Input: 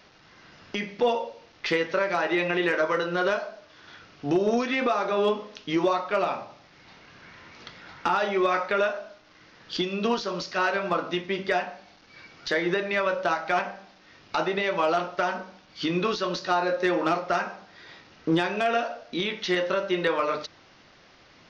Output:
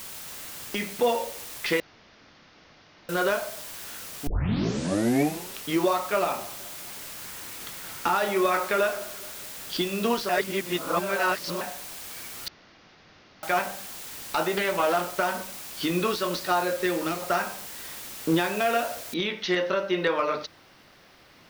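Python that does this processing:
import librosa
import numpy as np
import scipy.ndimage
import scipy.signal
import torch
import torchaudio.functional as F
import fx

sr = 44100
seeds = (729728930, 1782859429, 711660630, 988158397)

y = fx.echo_feedback(x, sr, ms=213, feedback_pct=54, wet_db=-20.0, at=(6.16, 9.79))
y = fx.doppler_dist(y, sr, depth_ms=0.25, at=(14.56, 15.21))
y = fx.peak_eq(y, sr, hz=870.0, db=fx.line((16.59, -1.5), (17.2, -11.0)), octaves=1.7, at=(16.59, 17.2), fade=0.02)
y = fx.noise_floor_step(y, sr, seeds[0], at_s=19.14, before_db=-40, after_db=-68, tilt_db=0.0)
y = fx.edit(y, sr, fx.room_tone_fill(start_s=1.8, length_s=1.29),
    fx.tape_start(start_s=4.27, length_s=1.38),
    fx.reverse_span(start_s=10.29, length_s=1.32),
    fx.room_tone_fill(start_s=12.48, length_s=0.95), tone=tone)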